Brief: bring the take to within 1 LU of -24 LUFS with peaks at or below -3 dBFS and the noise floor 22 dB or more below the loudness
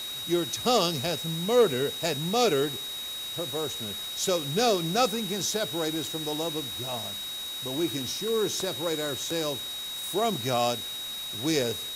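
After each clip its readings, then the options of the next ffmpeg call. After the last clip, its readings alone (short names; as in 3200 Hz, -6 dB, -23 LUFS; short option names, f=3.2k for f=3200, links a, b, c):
steady tone 3800 Hz; tone level -34 dBFS; noise floor -36 dBFS; noise floor target -50 dBFS; loudness -28.0 LUFS; peak -10.5 dBFS; loudness target -24.0 LUFS
-> -af "bandreject=f=3.8k:w=30"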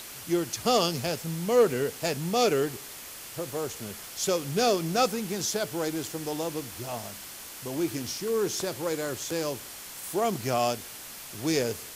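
steady tone none; noise floor -43 dBFS; noise floor target -51 dBFS
-> -af "afftdn=nr=8:nf=-43"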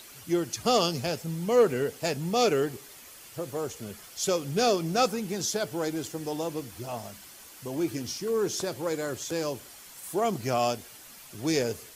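noise floor -49 dBFS; noise floor target -51 dBFS
-> -af "afftdn=nr=6:nf=-49"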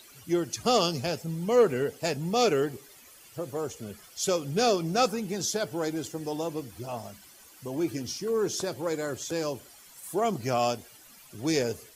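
noise floor -53 dBFS; loudness -29.0 LUFS; peak -11.0 dBFS; loudness target -24.0 LUFS
-> -af "volume=5dB"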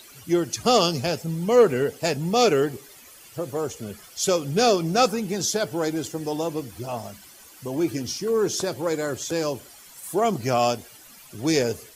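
loudness -24.0 LUFS; peak -6.0 dBFS; noise floor -48 dBFS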